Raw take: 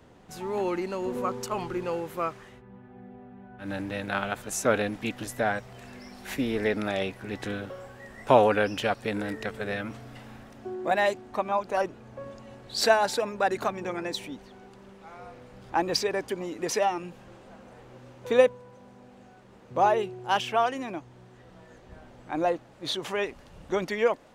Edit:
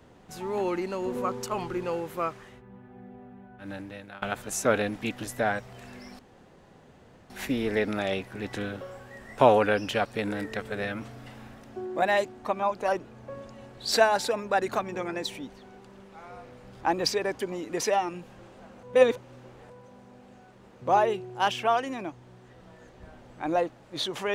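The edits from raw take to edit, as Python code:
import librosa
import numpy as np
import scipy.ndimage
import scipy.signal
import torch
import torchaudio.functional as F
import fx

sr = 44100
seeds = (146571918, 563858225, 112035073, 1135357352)

y = fx.edit(x, sr, fx.fade_out_to(start_s=3.29, length_s=0.93, floor_db=-20.0),
    fx.insert_room_tone(at_s=6.19, length_s=1.11),
    fx.reverse_span(start_s=17.72, length_s=0.87), tone=tone)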